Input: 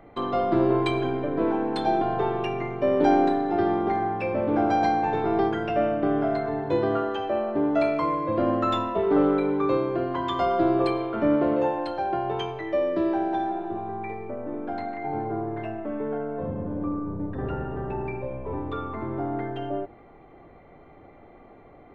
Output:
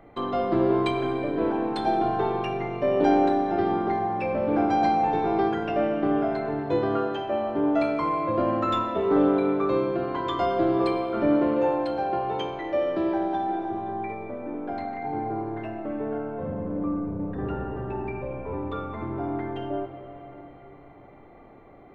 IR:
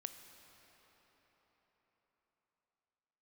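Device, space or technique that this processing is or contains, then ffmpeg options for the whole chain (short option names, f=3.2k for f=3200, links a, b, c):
cathedral: -filter_complex "[1:a]atrim=start_sample=2205[a];[0:a][a]afir=irnorm=-1:irlink=0,volume=3dB"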